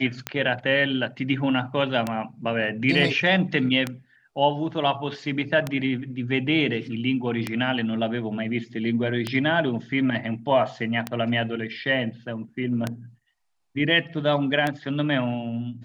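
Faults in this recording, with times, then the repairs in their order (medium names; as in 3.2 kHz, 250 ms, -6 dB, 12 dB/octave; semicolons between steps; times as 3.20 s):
tick 33 1/3 rpm -10 dBFS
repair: de-click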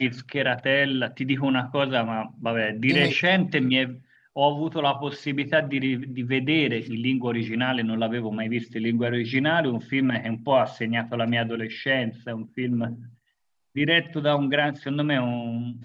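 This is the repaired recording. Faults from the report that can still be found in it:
nothing left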